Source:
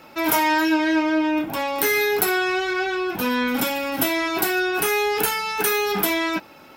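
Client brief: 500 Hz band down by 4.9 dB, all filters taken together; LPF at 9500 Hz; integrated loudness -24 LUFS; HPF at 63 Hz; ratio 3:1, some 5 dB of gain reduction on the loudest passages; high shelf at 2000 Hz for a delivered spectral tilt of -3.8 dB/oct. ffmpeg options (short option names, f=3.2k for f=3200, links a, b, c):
-af "highpass=63,lowpass=9.5k,equalizer=f=500:t=o:g=-6.5,highshelf=f=2k:g=-8.5,acompressor=threshold=-26dB:ratio=3,volume=5dB"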